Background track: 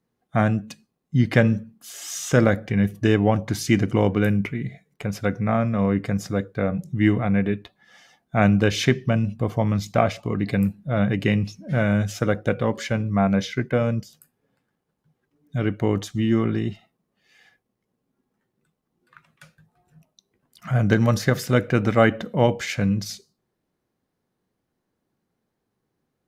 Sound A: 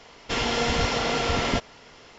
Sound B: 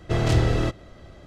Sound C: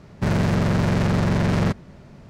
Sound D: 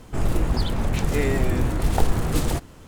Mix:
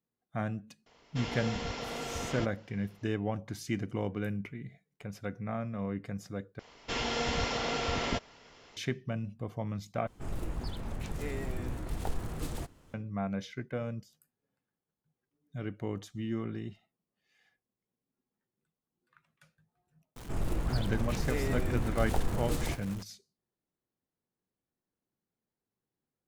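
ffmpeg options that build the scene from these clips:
ffmpeg -i bed.wav -i cue0.wav -i cue1.wav -i cue2.wav -i cue3.wav -filter_complex "[1:a]asplit=2[link_01][link_02];[4:a]asplit=2[link_03][link_04];[0:a]volume=-14.5dB[link_05];[link_01]equalizer=frequency=180:width=0.3:gain=3[link_06];[link_04]aeval=exprs='val(0)+0.5*0.0251*sgn(val(0))':channel_layout=same[link_07];[link_05]asplit=3[link_08][link_09][link_10];[link_08]atrim=end=6.594[link_11];[link_02]atrim=end=2.18,asetpts=PTS-STARTPTS,volume=-7.5dB[link_12];[link_09]atrim=start=8.766:end=10.074[link_13];[link_03]atrim=end=2.87,asetpts=PTS-STARTPTS,volume=-14.5dB[link_14];[link_10]atrim=start=12.936[link_15];[link_06]atrim=end=2.18,asetpts=PTS-STARTPTS,volume=-14.5dB,afade=type=in:duration=0.004:curve=hsin,afade=type=out:start_time=2.176:duration=0.004:curve=hsin,adelay=860[link_16];[link_07]atrim=end=2.87,asetpts=PTS-STARTPTS,volume=-11dB,afade=type=in:duration=0.004:curve=hsin,afade=type=out:start_time=2.866:duration=0.004:curve=hsin,adelay=20160[link_17];[link_11][link_12]acrossfade=duration=0.004:curve1=hsin:curve2=hsin[link_18];[link_18][link_13]acrossfade=duration=0.004:curve1=hsin:curve2=hsin[link_19];[link_19][link_14]acrossfade=duration=0.004:curve1=hsin:curve2=hsin[link_20];[link_20][link_15]acrossfade=duration=0.004:curve1=hsin:curve2=hsin[link_21];[link_21][link_16][link_17]amix=inputs=3:normalize=0" out.wav

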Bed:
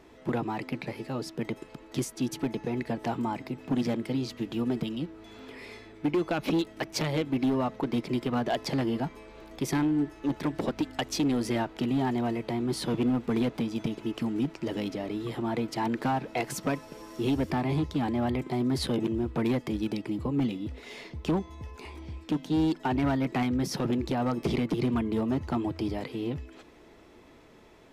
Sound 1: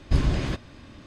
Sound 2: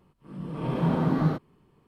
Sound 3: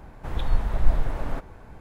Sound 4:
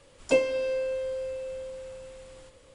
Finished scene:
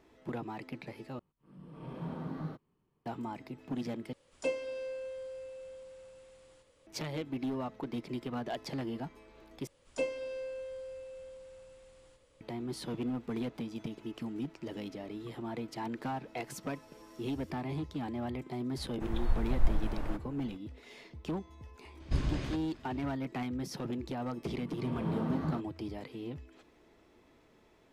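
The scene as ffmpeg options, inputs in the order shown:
ffmpeg -i bed.wav -i cue0.wav -i cue1.wav -i cue2.wav -i cue3.wav -filter_complex "[2:a]asplit=2[link_01][link_02];[4:a]asplit=2[link_03][link_04];[0:a]volume=-9dB[link_05];[link_03]lowshelf=frequency=87:gain=-6.5[link_06];[link_05]asplit=4[link_07][link_08][link_09][link_10];[link_07]atrim=end=1.194[link_11];[link_01]atrim=end=1.87,asetpts=PTS-STARTPTS,volume=-15.5dB[link_12];[link_08]atrim=start=3.056:end=4.134[link_13];[link_06]atrim=end=2.74,asetpts=PTS-STARTPTS,volume=-10.5dB[link_14];[link_09]atrim=start=6.866:end=9.674[link_15];[link_04]atrim=end=2.74,asetpts=PTS-STARTPTS,volume=-11dB[link_16];[link_10]atrim=start=12.406[link_17];[3:a]atrim=end=1.8,asetpts=PTS-STARTPTS,volume=-7.5dB,afade=type=in:duration=0.004:curve=hsin,afade=type=out:start_time=1.796:duration=0.004:curve=hsin,adelay=18770[link_18];[1:a]atrim=end=1.06,asetpts=PTS-STARTPTS,volume=-9.5dB,afade=type=in:duration=0.004:curve=hsin,afade=type=out:start_time=1.056:duration=0.004:curve=hsin,adelay=22000[link_19];[link_02]atrim=end=1.87,asetpts=PTS-STARTPTS,volume=-10.5dB,afade=type=in:duration=0.004:curve=hsin,afade=type=out:start_time=1.866:duration=0.004:curve=hsin,adelay=24230[link_20];[link_11][link_12]acrossfade=duration=0.004:curve1=hsin:curve2=hsin[link_21];[link_21][link_13]acrossfade=duration=0.004:curve1=hsin:curve2=hsin[link_22];[link_22][link_14]acrossfade=duration=0.004:curve1=hsin:curve2=hsin[link_23];[link_23][link_15]acrossfade=duration=0.004:curve1=hsin:curve2=hsin[link_24];[link_24][link_16]acrossfade=duration=0.004:curve1=hsin:curve2=hsin[link_25];[link_25][link_17]acrossfade=duration=0.004:curve1=hsin:curve2=hsin[link_26];[link_26][link_18][link_19][link_20]amix=inputs=4:normalize=0" out.wav

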